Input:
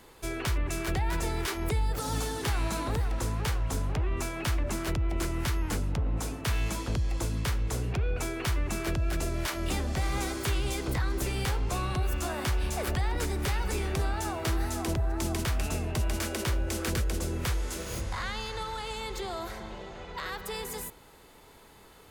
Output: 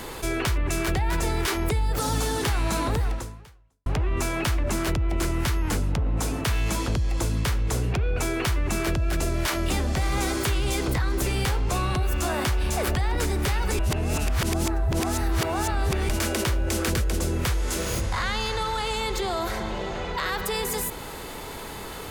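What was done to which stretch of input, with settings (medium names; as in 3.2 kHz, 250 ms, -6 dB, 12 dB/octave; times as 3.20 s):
3.10–3.86 s: fade out exponential
13.79–16.09 s: reverse
whole clip: level flattener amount 50%; trim +3 dB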